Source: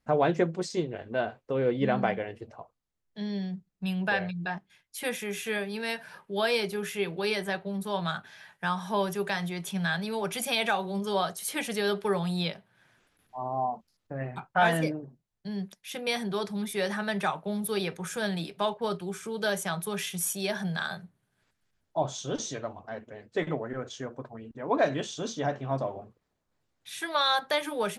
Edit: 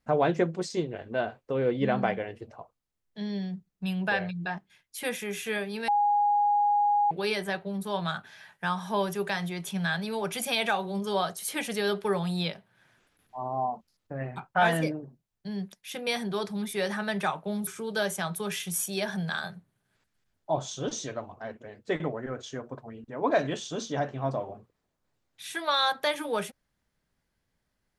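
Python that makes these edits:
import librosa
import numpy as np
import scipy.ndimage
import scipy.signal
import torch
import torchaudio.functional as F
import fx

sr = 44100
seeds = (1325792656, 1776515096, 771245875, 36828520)

y = fx.edit(x, sr, fx.bleep(start_s=5.88, length_s=1.23, hz=824.0, db=-20.5),
    fx.cut(start_s=17.67, length_s=1.47), tone=tone)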